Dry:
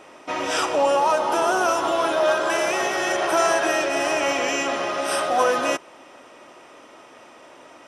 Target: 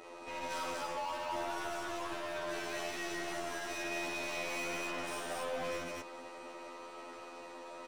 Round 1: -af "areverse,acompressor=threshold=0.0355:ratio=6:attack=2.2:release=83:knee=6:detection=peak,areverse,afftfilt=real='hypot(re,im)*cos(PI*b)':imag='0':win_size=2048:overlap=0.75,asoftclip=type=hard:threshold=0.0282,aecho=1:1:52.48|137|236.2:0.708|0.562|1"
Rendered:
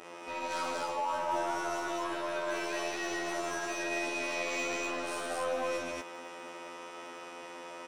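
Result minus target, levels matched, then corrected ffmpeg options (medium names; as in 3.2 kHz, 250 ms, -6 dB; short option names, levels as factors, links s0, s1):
hard clipper: distortion -5 dB
-af "areverse,acompressor=threshold=0.0355:ratio=6:attack=2.2:release=83:knee=6:detection=peak,areverse,afftfilt=real='hypot(re,im)*cos(PI*b)':imag='0':win_size=2048:overlap=0.75,asoftclip=type=hard:threshold=0.00891,aecho=1:1:52.48|137|236.2:0.708|0.562|1"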